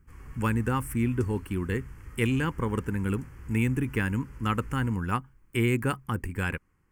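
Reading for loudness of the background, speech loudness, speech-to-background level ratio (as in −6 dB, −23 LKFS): −47.0 LKFS, −29.5 LKFS, 17.5 dB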